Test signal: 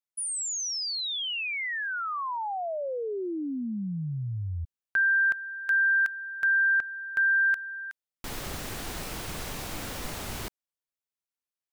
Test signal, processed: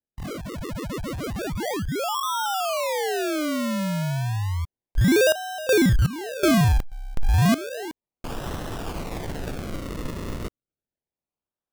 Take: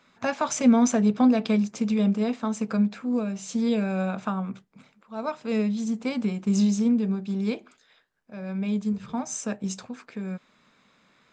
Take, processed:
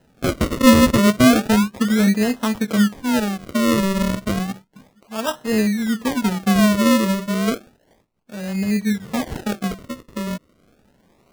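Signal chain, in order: local Wiener filter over 9 samples; decimation with a swept rate 38×, swing 100% 0.32 Hz; trim +6.5 dB

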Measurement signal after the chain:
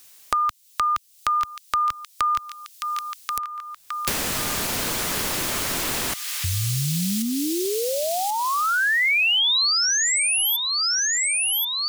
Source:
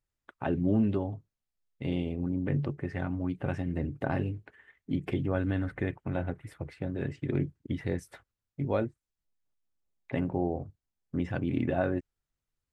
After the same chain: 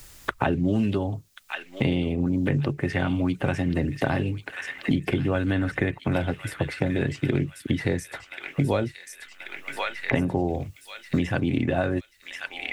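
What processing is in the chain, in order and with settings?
treble shelf 2.5 kHz +11 dB; feedback echo behind a high-pass 1084 ms, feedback 47%, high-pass 2.5 kHz, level -6.5 dB; three bands compressed up and down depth 100%; trim +5.5 dB

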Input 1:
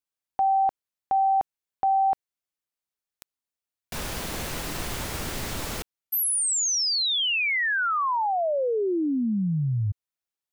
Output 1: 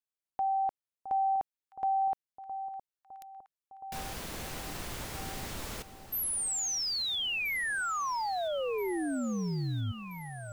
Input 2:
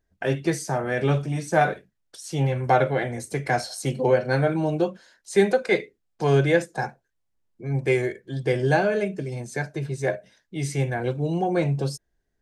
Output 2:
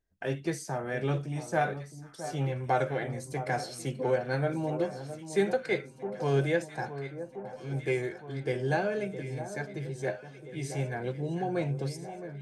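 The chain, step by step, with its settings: echo whose repeats swap between lows and highs 664 ms, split 1.2 kHz, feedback 76%, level -11 dB; trim -8 dB

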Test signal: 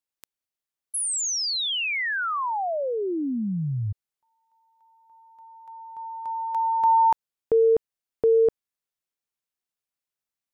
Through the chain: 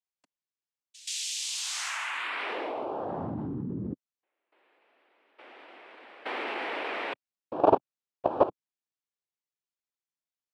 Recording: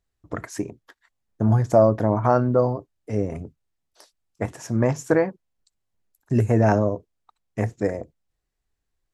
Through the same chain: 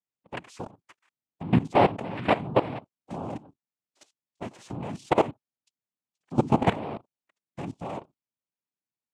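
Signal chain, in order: noise-vocoded speech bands 4; level held to a coarse grid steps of 17 dB

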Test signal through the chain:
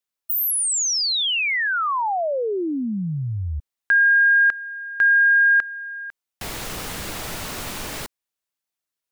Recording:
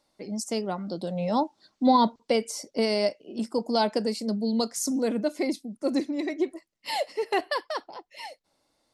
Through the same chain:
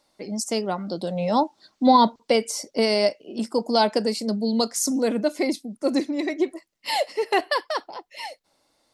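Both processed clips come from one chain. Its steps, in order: bass shelf 350 Hz -4 dB; trim +5.5 dB

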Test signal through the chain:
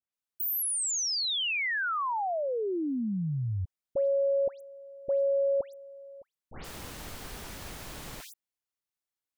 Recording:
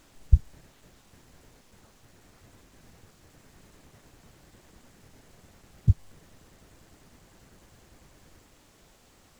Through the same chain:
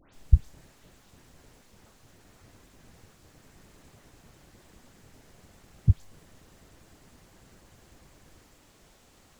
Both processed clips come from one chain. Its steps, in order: phase dispersion highs, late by 136 ms, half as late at 2.5 kHz

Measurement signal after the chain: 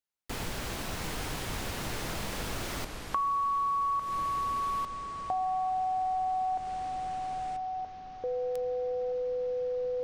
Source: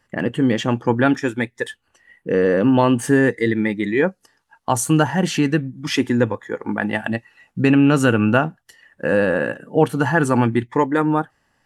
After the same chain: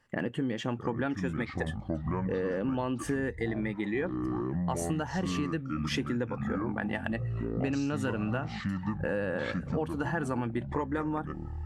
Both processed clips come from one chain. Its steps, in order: treble shelf 7.5 kHz -5.5 dB; ever faster or slower copies 589 ms, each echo -7 st, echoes 3, each echo -6 dB; compression 6:1, threshold -24 dBFS; trim -4.5 dB

